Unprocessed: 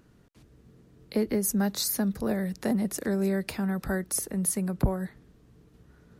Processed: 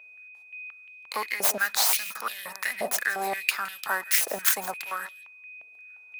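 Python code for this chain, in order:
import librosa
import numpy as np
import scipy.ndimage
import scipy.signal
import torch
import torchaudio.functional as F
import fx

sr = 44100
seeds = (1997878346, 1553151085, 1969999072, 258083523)

p1 = fx.tracing_dist(x, sr, depth_ms=0.16)
p2 = fx.high_shelf(p1, sr, hz=6200.0, db=8.0)
p3 = fx.leveller(p2, sr, passes=3)
p4 = p3 + 10.0 ** (-41.0 / 20.0) * np.sin(2.0 * np.pi * 2500.0 * np.arange(len(p3)) / sr)
p5 = p4 + fx.echo_single(p4, sr, ms=165, db=-16.5, dry=0)
p6 = fx.filter_held_highpass(p5, sr, hz=5.7, low_hz=650.0, high_hz=3100.0)
y = p6 * 10.0 ** (-6.5 / 20.0)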